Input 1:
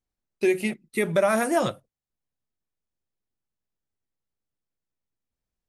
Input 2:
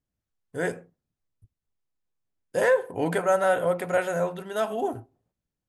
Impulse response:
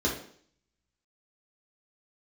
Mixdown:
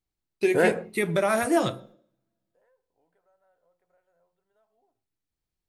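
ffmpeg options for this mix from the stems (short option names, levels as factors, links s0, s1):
-filter_complex "[0:a]equalizer=f=4200:w=4.3:g=3.5,volume=0.944,asplit=3[s0][s1][s2];[s1]volume=0.0841[s3];[1:a]acompressor=threshold=0.0282:ratio=2.5,equalizer=f=770:t=o:w=2.8:g=11,dynaudnorm=f=240:g=7:m=2.66,volume=1.12[s4];[s2]apad=whole_len=250662[s5];[s4][s5]sidechaingate=range=0.00158:threshold=0.00178:ratio=16:detection=peak[s6];[2:a]atrim=start_sample=2205[s7];[s3][s7]afir=irnorm=-1:irlink=0[s8];[s0][s6][s8]amix=inputs=3:normalize=0"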